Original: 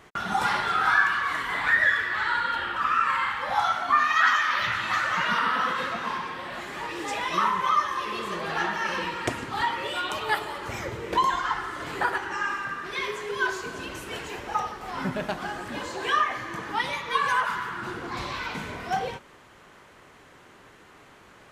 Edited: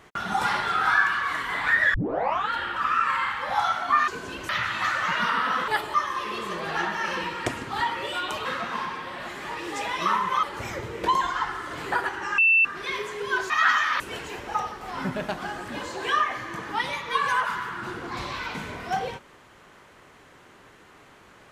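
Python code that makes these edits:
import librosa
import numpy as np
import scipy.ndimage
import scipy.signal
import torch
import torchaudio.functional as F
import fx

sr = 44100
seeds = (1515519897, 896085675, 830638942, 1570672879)

y = fx.edit(x, sr, fx.tape_start(start_s=1.94, length_s=0.57),
    fx.swap(start_s=4.08, length_s=0.5, other_s=13.59, other_length_s=0.41),
    fx.swap(start_s=5.77, length_s=1.98, other_s=10.26, other_length_s=0.26),
    fx.bleep(start_s=12.47, length_s=0.27, hz=2670.0, db=-15.0), tone=tone)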